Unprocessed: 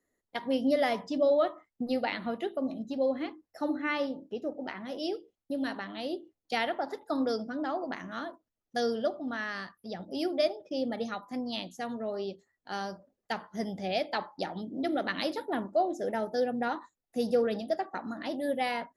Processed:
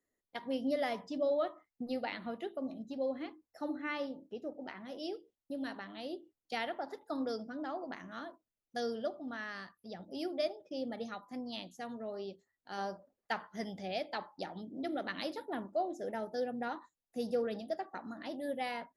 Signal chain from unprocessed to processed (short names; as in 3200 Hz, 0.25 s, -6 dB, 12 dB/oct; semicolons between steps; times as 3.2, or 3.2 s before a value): 12.77–13.81 bell 510 Hz -> 3500 Hz +7 dB 2.3 oct; gain -7 dB